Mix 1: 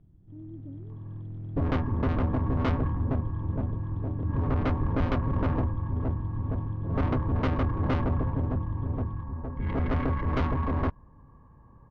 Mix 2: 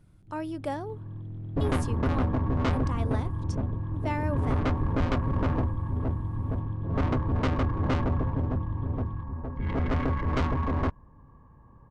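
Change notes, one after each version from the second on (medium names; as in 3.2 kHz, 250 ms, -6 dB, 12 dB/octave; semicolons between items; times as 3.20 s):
speech: remove inverse Chebyshev low-pass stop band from 1.5 kHz, stop band 80 dB; master: remove distance through air 140 m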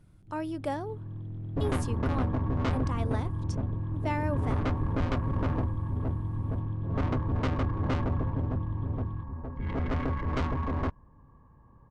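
second sound -3.0 dB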